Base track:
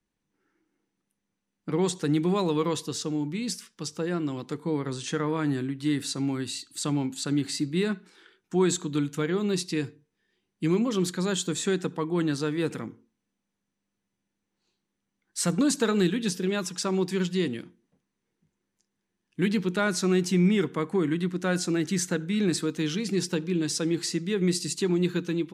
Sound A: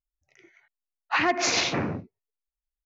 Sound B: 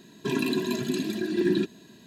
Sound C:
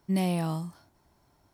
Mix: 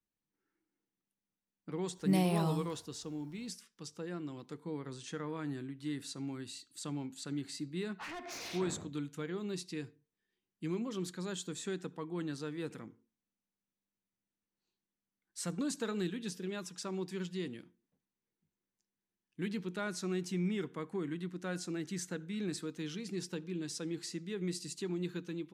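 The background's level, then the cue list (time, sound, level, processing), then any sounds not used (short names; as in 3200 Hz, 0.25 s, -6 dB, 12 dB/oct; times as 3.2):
base track -12.5 dB
1.97 add C -2.5 dB
6.88 add A -14.5 dB + soft clip -26.5 dBFS
not used: B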